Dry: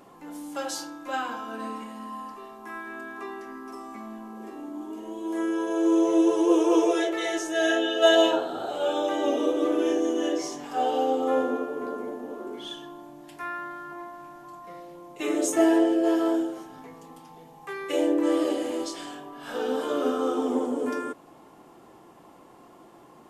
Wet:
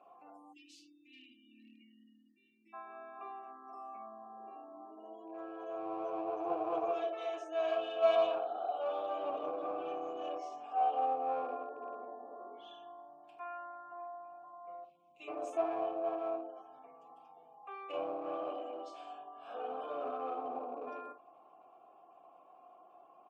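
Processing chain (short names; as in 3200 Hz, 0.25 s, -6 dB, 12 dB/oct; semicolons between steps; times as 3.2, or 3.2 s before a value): 14.84–15.28 band shelf 790 Hz -14 dB 2.7 oct; on a send: early reflections 28 ms -14 dB, 50 ms -10.5 dB; on the sum: spectral gate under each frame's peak -30 dB strong; one-sided clip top -25 dBFS; 0.53–2.73 spectral delete 370–1800 Hz; vowel filter a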